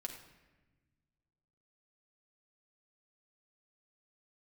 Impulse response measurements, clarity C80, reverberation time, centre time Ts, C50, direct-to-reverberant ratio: 9.0 dB, 1.2 s, 24 ms, 6.5 dB, 2.0 dB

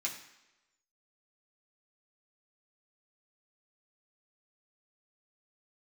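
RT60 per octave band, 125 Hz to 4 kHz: 0.75 s, 0.90 s, 1.0 s, 1.0 s, 1.0 s, 0.90 s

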